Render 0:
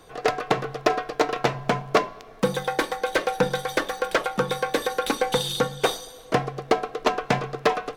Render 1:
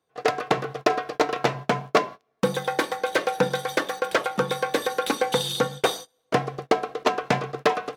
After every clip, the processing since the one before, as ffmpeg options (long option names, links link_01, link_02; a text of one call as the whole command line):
ffmpeg -i in.wav -af "highpass=100,agate=range=-26dB:threshold=-34dB:ratio=16:detection=peak" out.wav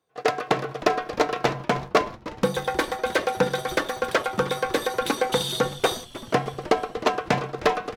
ffmpeg -i in.wav -filter_complex "[0:a]asplit=7[link_01][link_02][link_03][link_04][link_05][link_06][link_07];[link_02]adelay=310,afreqshift=-130,volume=-16dB[link_08];[link_03]adelay=620,afreqshift=-260,volume=-20.3dB[link_09];[link_04]adelay=930,afreqshift=-390,volume=-24.6dB[link_10];[link_05]adelay=1240,afreqshift=-520,volume=-28.9dB[link_11];[link_06]adelay=1550,afreqshift=-650,volume=-33.2dB[link_12];[link_07]adelay=1860,afreqshift=-780,volume=-37.5dB[link_13];[link_01][link_08][link_09][link_10][link_11][link_12][link_13]amix=inputs=7:normalize=0" out.wav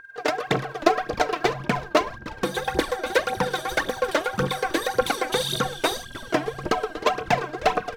ffmpeg -i in.wav -af "aeval=exprs='val(0)+0.00708*sin(2*PI*1600*n/s)':channel_layout=same,aphaser=in_gain=1:out_gain=1:delay=3.5:decay=0.69:speed=1.8:type=triangular,volume=-2dB" out.wav